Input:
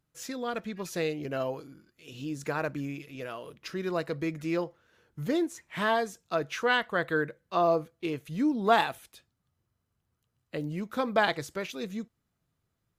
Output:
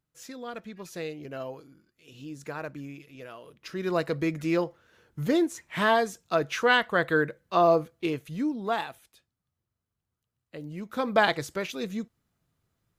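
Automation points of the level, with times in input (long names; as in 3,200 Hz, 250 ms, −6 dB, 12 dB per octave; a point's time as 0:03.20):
0:03.52 −5 dB
0:03.93 +4 dB
0:08.05 +4 dB
0:08.77 −6.5 dB
0:10.58 −6.5 dB
0:11.15 +3 dB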